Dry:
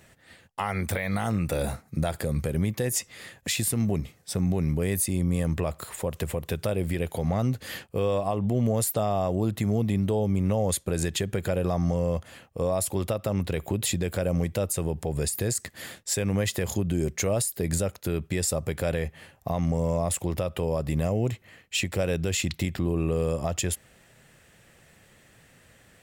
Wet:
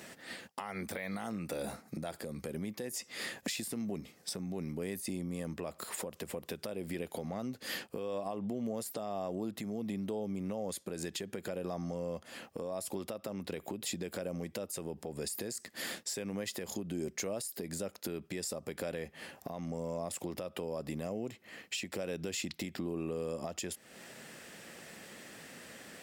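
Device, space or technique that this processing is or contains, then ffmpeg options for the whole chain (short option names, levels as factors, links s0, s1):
broadcast voice chain: -af "highpass=78,deesser=0.45,acompressor=threshold=0.00708:ratio=4,equalizer=f=5000:t=o:w=0.39:g=5,alimiter=level_in=2.66:limit=0.0631:level=0:latency=1:release=242,volume=0.376,lowshelf=f=160:t=q:w=1.5:g=-10,volume=2.11"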